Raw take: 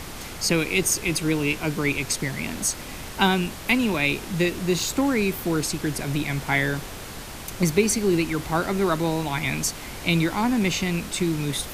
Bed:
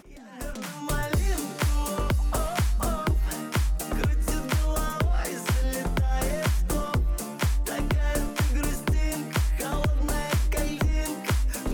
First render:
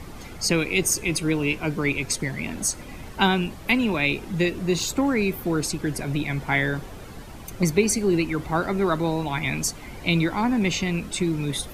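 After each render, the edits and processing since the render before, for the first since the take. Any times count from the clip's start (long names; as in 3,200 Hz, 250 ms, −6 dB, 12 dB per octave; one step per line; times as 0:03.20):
broadband denoise 11 dB, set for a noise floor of −37 dBFS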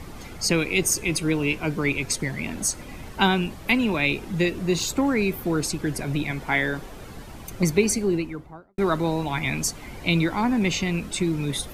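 0:06.31–0:06.99: parametric band 110 Hz −10.5 dB
0:07.83–0:08.78: fade out and dull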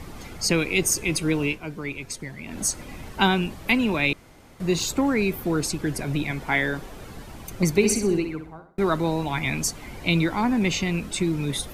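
0:01.45–0:02.60: duck −8 dB, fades 0.14 s
0:04.13–0:04.60: fill with room tone
0:07.69–0:08.79: flutter between parallel walls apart 10.8 metres, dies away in 0.43 s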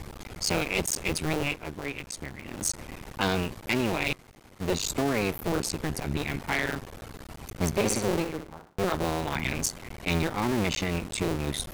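sub-harmonics by changed cycles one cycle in 2, muted
soft clipping −16.5 dBFS, distortion −15 dB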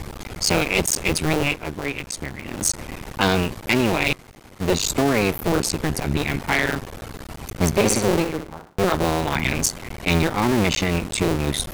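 level +7.5 dB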